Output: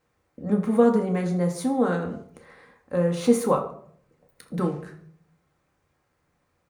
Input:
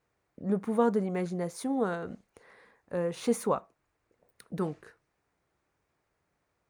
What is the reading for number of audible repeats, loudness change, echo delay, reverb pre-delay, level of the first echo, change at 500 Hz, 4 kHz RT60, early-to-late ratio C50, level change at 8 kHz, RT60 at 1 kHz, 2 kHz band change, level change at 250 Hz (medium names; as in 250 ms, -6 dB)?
1, +7.0 dB, 80 ms, 4 ms, -15.5 dB, +7.0 dB, 0.40 s, 10.0 dB, +5.5 dB, 0.55 s, +5.5 dB, +8.0 dB